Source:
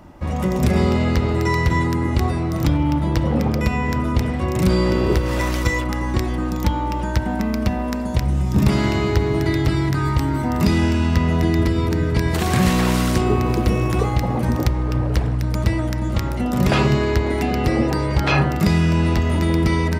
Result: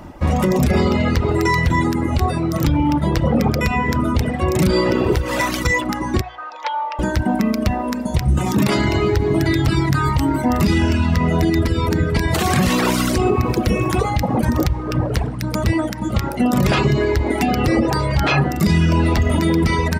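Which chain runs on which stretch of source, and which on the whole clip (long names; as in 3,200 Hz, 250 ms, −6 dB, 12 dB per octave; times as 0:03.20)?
0:06.21–0:06.99: high-pass filter 620 Hz 24 dB per octave + high-frequency loss of the air 200 metres
0:08.37–0:08.77: high-pass filter 250 Hz 6 dB per octave + notch filter 5,100 Hz, Q 24 + envelope flattener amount 70%
whole clip: mains-hum notches 60/120/180 Hz; reverb reduction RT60 1.6 s; brickwall limiter −15 dBFS; level +7.5 dB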